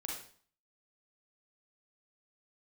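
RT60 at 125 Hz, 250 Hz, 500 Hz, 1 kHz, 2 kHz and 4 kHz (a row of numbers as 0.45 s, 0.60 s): 0.55 s, 0.55 s, 0.50 s, 0.50 s, 0.45 s, 0.45 s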